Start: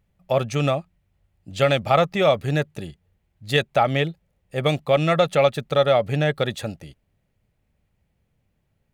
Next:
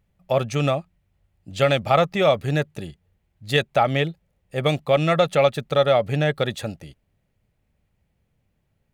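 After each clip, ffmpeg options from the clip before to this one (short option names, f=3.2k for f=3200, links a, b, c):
-af anull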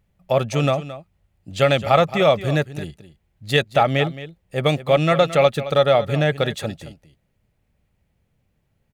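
-af "aecho=1:1:220:0.188,volume=2dB"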